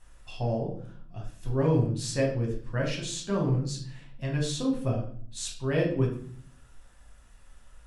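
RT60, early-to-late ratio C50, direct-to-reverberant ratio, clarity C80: 0.55 s, 6.5 dB, −1.5 dB, 10.5 dB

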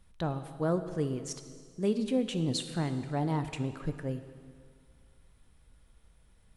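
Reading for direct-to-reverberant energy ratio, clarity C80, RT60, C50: 9.0 dB, 11.5 dB, 2.0 s, 10.5 dB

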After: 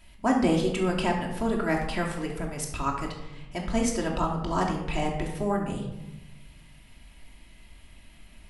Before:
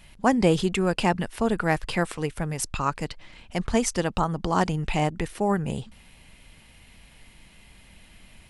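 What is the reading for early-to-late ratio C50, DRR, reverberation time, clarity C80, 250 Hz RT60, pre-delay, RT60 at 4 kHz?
5.0 dB, −1.0 dB, 1.0 s, 8.0 dB, 1.5 s, 3 ms, 0.55 s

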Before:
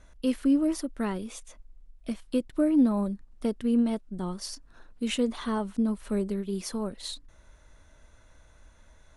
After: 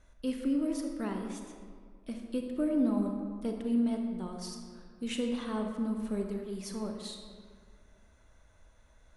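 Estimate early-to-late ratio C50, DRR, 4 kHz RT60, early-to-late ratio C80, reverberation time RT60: 4.0 dB, 2.5 dB, 1.1 s, 5.0 dB, 1.9 s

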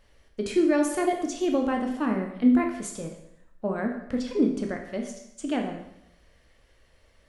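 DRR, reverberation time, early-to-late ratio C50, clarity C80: 2.0 dB, 0.80 s, 6.0 dB, 9.0 dB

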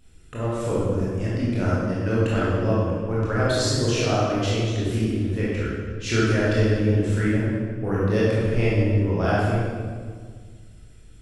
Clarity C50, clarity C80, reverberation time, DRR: −3.0 dB, 0.0 dB, 1.7 s, −8.0 dB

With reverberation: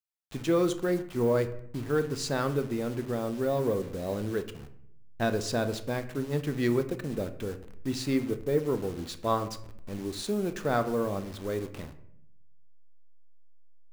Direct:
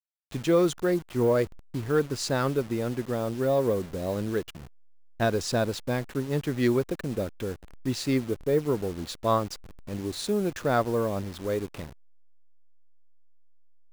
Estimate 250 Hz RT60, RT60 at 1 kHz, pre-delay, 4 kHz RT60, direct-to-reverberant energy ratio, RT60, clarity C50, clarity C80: 1.0 s, 0.65 s, 3 ms, 0.45 s, 8.5 dB, 0.70 s, 13.0 dB, 16.0 dB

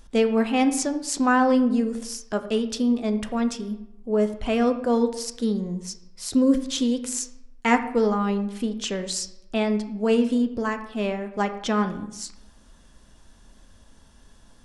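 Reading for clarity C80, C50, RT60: 14.0 dB, 11.5 dB, 0.85 s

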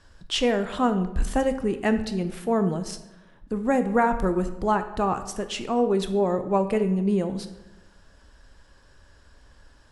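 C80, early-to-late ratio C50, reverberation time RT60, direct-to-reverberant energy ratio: 13.5 dB, 11.5 dB, 1.0 s, 9.0 dB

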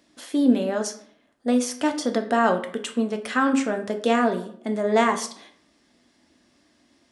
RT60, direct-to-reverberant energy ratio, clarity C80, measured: 0.60 s, 5.0 dB, 15.0 dB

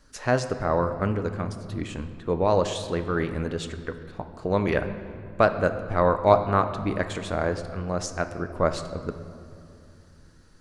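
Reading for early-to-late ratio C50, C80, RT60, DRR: 10.5 dB, 11.5 dB, 2.6 s, 8.5 dB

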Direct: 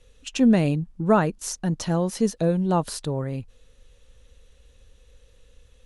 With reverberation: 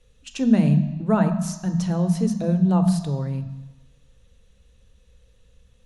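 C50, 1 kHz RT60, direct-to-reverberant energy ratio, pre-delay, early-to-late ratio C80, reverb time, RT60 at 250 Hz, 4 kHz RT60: 10.0 dB, 1.2 s, 7.0 dB, 3 ms, 11.5 dB, 1.1 s, 1.1 s, 1.2 s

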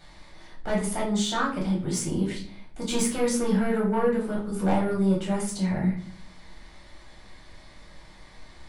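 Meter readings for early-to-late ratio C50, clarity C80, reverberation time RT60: 6.5 dB, 12.0 dB, 0.55 s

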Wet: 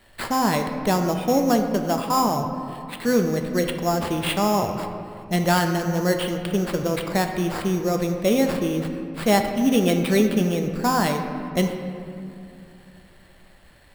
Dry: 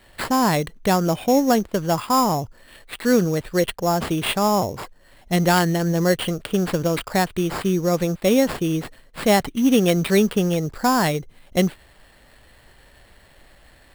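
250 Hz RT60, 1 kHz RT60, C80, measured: 3.3 s, 2.5 s, 7.0 dB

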